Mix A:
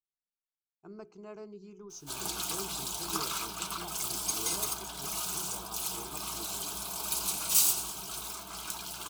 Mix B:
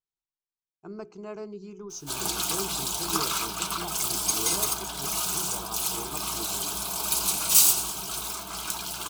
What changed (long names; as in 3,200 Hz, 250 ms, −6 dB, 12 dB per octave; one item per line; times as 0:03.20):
speech +7.5 dB
background +6.5 dB